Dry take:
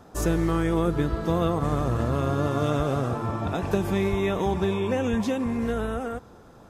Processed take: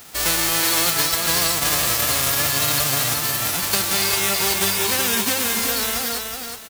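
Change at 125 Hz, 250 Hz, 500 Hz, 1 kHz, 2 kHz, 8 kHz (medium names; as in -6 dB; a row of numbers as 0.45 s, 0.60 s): -6.0 dB, -6.0 dB, -3.0 dB, +4.0 dB, +13.0 dB, +25.0 dB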